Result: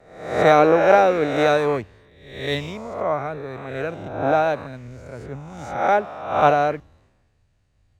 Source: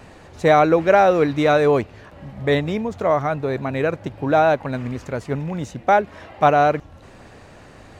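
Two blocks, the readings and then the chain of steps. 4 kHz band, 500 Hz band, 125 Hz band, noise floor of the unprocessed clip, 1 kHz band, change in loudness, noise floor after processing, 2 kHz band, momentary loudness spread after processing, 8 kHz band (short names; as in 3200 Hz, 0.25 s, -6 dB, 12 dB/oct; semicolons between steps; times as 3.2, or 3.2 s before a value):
+0.5 dB, -1.0 dB, -5.5 dB, -45 dBFS, -1.0 dB, -0.5 dB, -64 dBFS, -1.0 dB, 21 LU, n/a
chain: spectral swells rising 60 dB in 1.30 s; three-band expander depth 100%; gain -5.5 dB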